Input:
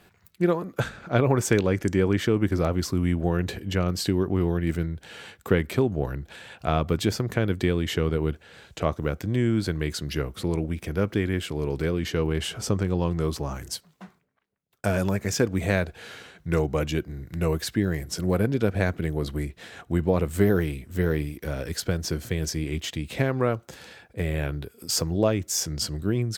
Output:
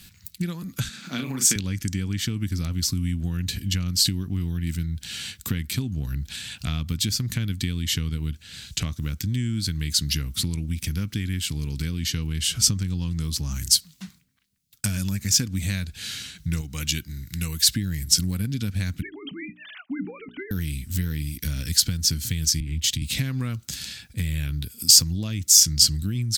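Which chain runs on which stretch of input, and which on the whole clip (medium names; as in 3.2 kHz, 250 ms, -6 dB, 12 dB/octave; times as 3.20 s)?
0.89–1.56 s: high-pass 190 Hz 24 dB/octave + doubling 38 ms -5 dB
16.61–17.69 s: bass shelf 450 Hz -8 dB + band-stop 630 Hz, Q 8.4
19.02–20.51 s: formants replaced by sine waves + hum notches 60/120/180/240/300/360/420 Hz
22.60–23.02 s: bass shelf 150 Hz +7 dB + compression 5:1, threshold -28 dBFS + three bands expanded up and down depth 70%
whole clip: bass shelf 150 Hz +10 dB; compression 3:1, threshold -27 dBFS; FFT filter 260 Hz 0 dB, 380 Hz -15 dB, 640 Hz -17 dB, 4.4 kHz +14 dB; trim +2.5 dB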